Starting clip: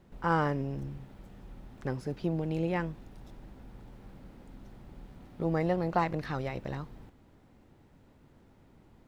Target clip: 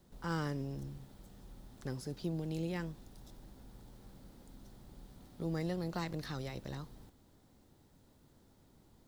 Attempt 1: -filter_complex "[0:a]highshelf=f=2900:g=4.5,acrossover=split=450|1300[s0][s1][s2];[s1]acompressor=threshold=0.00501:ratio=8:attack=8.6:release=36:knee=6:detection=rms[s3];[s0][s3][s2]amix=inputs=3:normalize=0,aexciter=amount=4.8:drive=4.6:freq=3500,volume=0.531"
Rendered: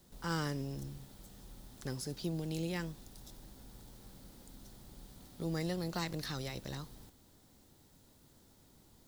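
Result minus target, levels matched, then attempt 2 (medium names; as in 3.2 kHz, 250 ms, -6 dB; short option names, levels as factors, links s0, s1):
8 kHz band +7.5 dB
-filter_complex "[0:a]highshelf=f=2900:g=-4.5,acrossover=split=450|1300[s0][s1][s2];[s1]acompressor=threshold=0.00501:ratio=8:attack=8.6:release=36:knee=6:detection=rms[s3];[s0][s3][s2]amix=inputs=3:normalize=0,aexciter=amount=4.8:drive=4.6:freq=3500,volume=0.531"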